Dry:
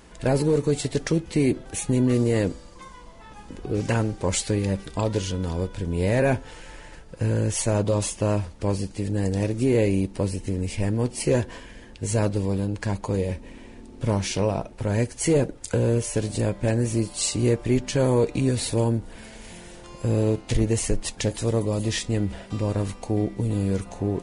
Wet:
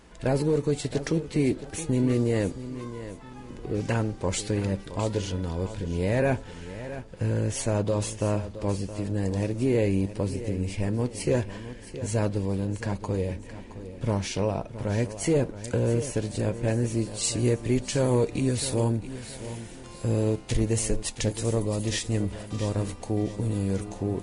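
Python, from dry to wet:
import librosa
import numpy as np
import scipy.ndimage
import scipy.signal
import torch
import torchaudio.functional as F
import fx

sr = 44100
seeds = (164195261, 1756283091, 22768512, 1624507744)

y = fx.high_shelf(x, sr, hz=7600.0, db=fx.steps((0.0, -5.0), (17.23, 4.5)))
y = fx.echo_feedback(y, sr, ms=668, feedback_pct=35, wet_db=-13)
y = y * librosa.db_to_amplitude(-3.0)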